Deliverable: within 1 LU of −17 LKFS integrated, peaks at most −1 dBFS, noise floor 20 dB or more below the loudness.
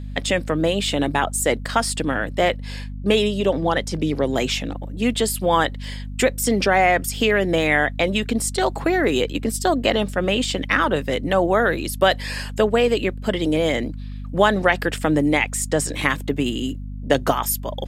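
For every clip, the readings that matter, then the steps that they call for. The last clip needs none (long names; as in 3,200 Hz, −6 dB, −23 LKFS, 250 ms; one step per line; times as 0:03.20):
mains hum 50 Hz; hum harmonics up to 250 Hz; level of the hum −29 dBFS; integrated loudness −21.0 LKFS; sample peak −3.0 dBFS; target loudness −17.0 LKFS
→ mains-hum notches 50/100/150/200/250 Hz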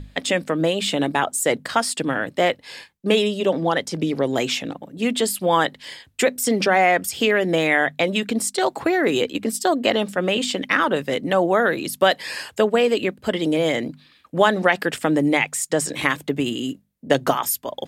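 mains hum none found; integrated loudness −21.0 LKFS; sample peak −3.0 dBFS; target loudness −17.0 LKFS
→ level +4 dB
brickwall limiter −1 dBFS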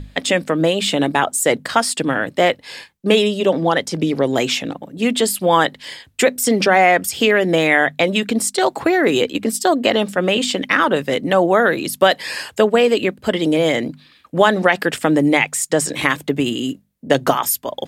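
integrated loudness −17.0 LKFS; sample peak −1.0 dBFS; background noise floor −51 dBFS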